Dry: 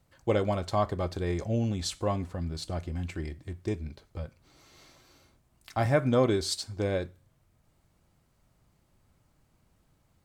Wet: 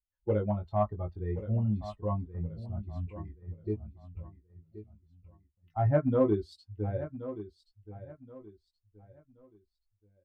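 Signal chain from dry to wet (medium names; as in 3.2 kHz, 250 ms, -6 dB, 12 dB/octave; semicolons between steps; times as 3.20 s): expander on every frequency bin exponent 2; peaking EQ 2.8 kHz -12.5 dB 1.7 oct; doubling 19 ms -4 dB; in parallel at -9.5 dB: hard clipper -25 dBFS, distortion -11 dB; on the sum: distance through air 420 m; feedback delay 1076 ms, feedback 30%, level -13.5 dB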